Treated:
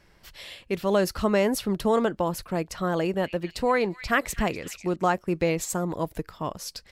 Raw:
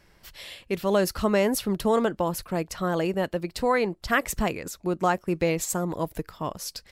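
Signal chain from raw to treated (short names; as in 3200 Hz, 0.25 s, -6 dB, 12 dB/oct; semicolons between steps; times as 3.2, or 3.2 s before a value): high shelf 10000 Hz -6 dB; 2.91–4.96 delay with a stepping band-pass 0.248 s, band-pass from 2700 Hz, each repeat 0.7 oct, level -8 dB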